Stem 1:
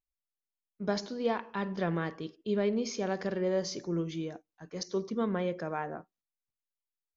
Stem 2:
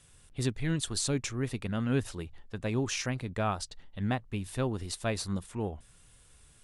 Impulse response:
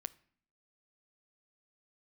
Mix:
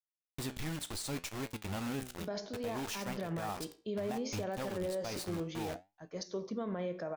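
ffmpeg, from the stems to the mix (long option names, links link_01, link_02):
-filter_complex "[0:a]equalizer=frequency=630:width_type=o:width=0.37:gain=7.5,dynaudnorm=framelen=460:gausssize=5:maxgain=4dB,adelay=1400,volume=-3dB[link_01];[1:a]equalizer=frequency=125:width_type=o:width=0.33:gain=-8,equalizer=frequency=200:width_type=o:width=0.33:gain=-3,equalizer=frequency=400:width_type=o:width=0.33:gain=-4,equalizer=frequency=800:width_type=o:width=0.33:gain=9,equalizer=frequency=1600:width_type=o:width=0.33:gain=-4,equalizer=frequency=6300:width_type=o:width=0.33:gain=-3,acrusher=bits=5:mix=0:aa=0.000001,volume=-0.5dB[link_02];[link_01][link_02]amix=inputs=2:normalize=0,flanger=delay=9.1:depth=8:regen=74:speed=0.66:shape=sinusoidal,alimiter=level_in=5dB:limit=-24dB:level=0:latency=1:release=52,volume=-5dB"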